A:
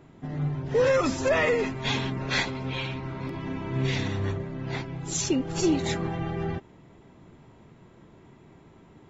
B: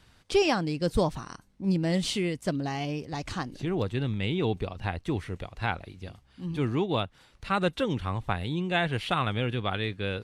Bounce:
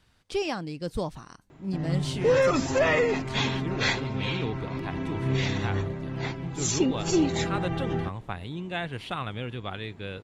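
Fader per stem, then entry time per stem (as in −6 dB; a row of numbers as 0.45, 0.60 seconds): +0.5, −5.5 decibels; 1.50, 0.00 seconds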